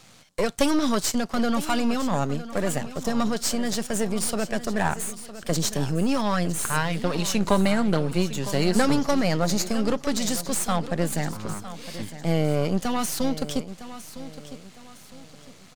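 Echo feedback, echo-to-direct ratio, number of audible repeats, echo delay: 37%, -13.5 dB, 3, 958 ms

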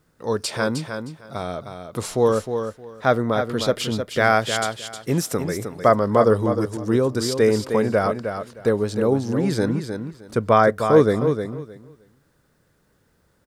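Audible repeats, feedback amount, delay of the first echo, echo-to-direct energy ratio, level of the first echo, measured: 2, 19%, 310 ms, -7.5 dB, -7.5 dB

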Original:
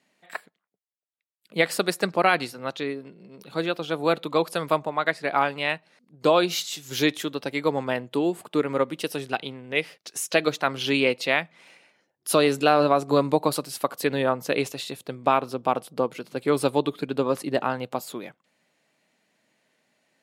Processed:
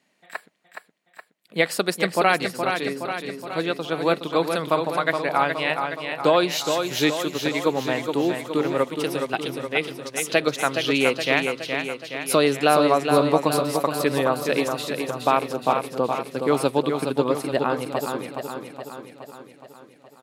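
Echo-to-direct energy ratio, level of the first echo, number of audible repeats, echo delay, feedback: -4.0 dB, -6.0 dB, 7, 419 ms, 58%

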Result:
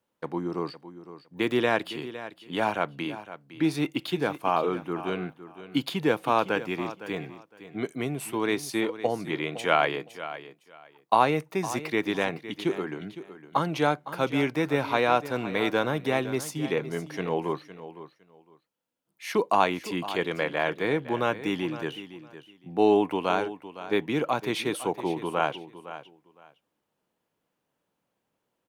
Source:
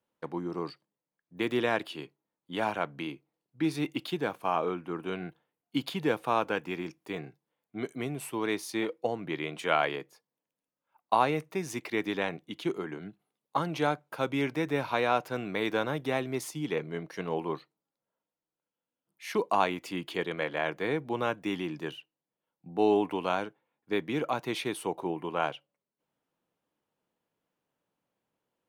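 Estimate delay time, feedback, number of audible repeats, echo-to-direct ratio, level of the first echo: 510 ms, 19%, 2, -14.0 dB, -14.0 dB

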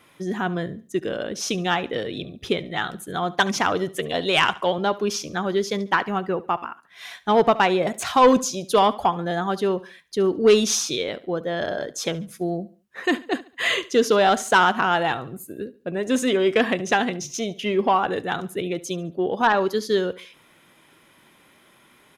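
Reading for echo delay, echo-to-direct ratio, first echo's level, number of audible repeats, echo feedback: 71 ms, -18.5 dB, -19.0 dB, 2, 34%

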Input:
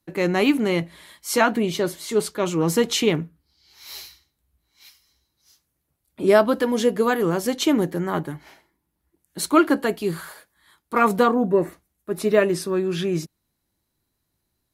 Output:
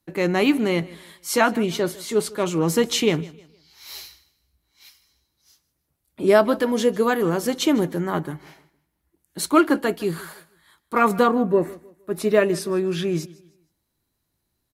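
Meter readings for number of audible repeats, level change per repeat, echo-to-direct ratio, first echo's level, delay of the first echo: 2, -9.5 dB, -20.5 dB, -21.0 dB, 155 ms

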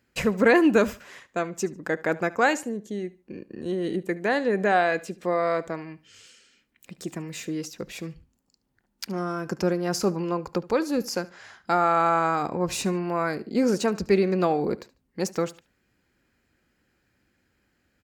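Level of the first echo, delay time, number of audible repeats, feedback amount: -20.0 dB, 73 ms, 2, 27%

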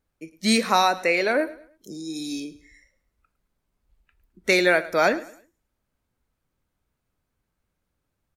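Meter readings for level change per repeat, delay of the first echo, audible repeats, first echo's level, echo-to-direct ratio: -9.5 dB, 106 ms, 2, -18.0 dB, -17.5 dB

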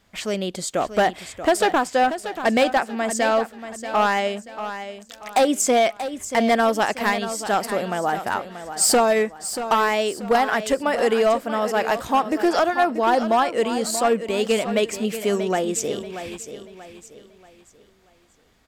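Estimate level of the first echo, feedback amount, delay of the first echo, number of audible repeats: -11.0 dB, 36%, 634 ms, 3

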